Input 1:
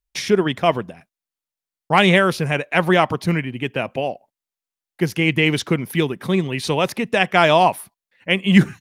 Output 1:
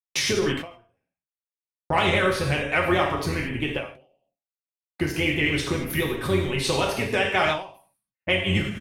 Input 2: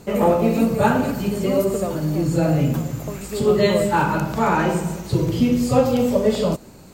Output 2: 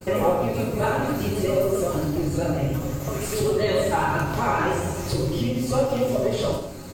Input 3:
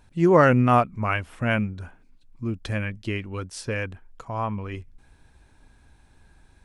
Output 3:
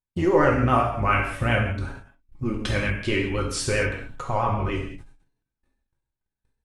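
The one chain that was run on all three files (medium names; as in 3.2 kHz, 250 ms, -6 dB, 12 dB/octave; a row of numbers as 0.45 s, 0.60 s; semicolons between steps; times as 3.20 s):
octave divider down 1 oct, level -4 dB; vibrato 7.5 Hz 97 cents; comb 7.3 ms, depth 34%; compression 3:1, threshold -27 dBFS; gate -45 dBFS, range -45 dB; gated-style reverb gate 250 ms falling, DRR -1.5 dB; dynamic bell 170 Hz, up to -4 dB, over -38 dBFS, Q 0.87; endings held to a fixed fall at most 120 dB/s; normalise loudness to -24 LUFS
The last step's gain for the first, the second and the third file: +2.5 dB, +3.0 dB, +5.5 dB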